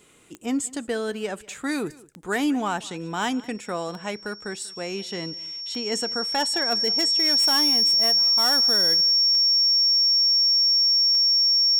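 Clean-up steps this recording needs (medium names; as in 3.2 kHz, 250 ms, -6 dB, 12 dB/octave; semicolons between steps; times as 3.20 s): clip repair -16.5 dBFS; de-click; band-stop 5.5 kHz, Q 30; inverse comb 190 ms -22 dB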